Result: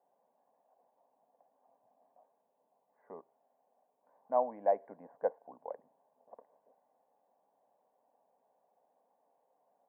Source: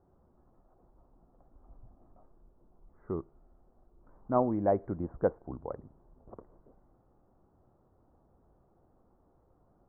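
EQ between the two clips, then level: high-pass 320 Hz 24 dB/octave; static phaser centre 1.3 kHz, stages 6; 0.0 dB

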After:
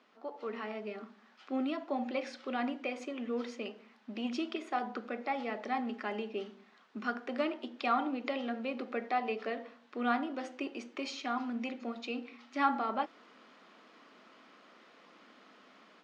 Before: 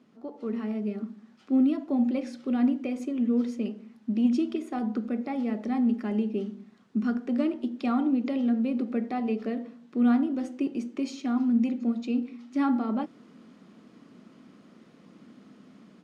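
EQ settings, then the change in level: band-pass 720–4600 Hz; +5.0 dB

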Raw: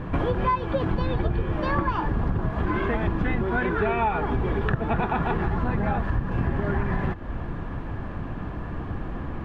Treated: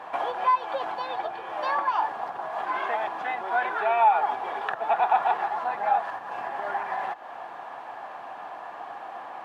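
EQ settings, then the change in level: resonant high-pass 760 Hz, resonance Q 4.9; treble shelf 3.3 kHz +10.5 dB; -5.0 dB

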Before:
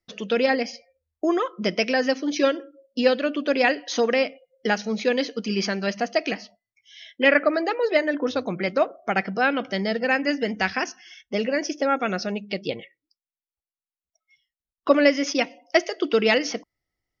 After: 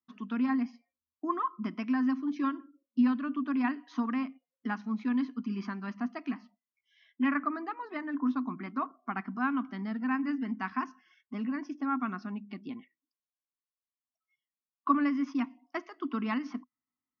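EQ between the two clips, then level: two resonant band-passes 520 Hz, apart 2.1 oct; +2.5 dB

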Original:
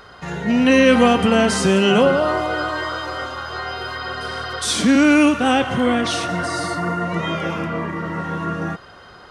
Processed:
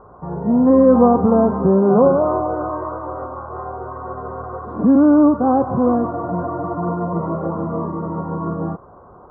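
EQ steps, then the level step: elliptic low-pass 1.1 kHz, stop band 60 dB; +2.5 dB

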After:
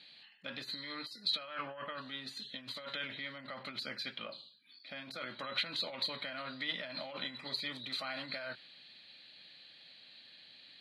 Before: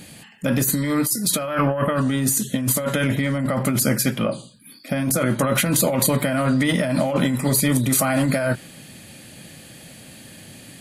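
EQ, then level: band-pass filter 4.1 kHz, Q 11; distance through air 490 m; +16.0 dB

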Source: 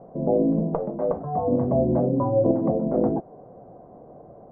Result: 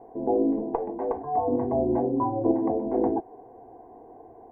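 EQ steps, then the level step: bass shelf 340 Hz -8 dB; static phaser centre 860 Hz, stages 8; +5.0 dB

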